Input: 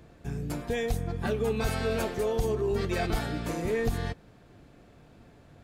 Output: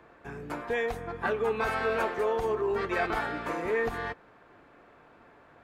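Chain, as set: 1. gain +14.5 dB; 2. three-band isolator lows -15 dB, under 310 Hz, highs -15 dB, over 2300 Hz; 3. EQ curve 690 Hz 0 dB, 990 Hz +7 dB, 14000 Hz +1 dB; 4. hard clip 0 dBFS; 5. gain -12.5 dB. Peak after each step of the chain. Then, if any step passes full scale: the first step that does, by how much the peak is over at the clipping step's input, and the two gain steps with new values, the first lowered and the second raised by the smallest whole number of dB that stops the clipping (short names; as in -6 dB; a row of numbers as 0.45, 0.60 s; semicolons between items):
-2.0, -6.5, -2.5, -2.5, -15.0 dBFS; no overload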